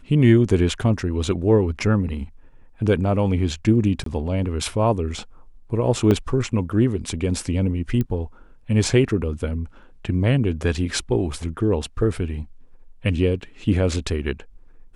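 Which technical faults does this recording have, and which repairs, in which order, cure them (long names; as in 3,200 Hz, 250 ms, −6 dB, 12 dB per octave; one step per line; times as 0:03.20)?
0:04.04–0:04.06: drop-out 23 ms
0:06.11: drop-out 3.4 ms
0:08.01: click −13 dBFS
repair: click removal
repair the gap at 0:04.04, 23 ms
repair the gap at 0:06.11, 3.4 ms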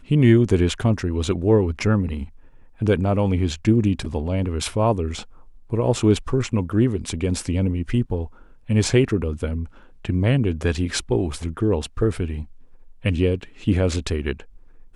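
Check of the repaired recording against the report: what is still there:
none of them is left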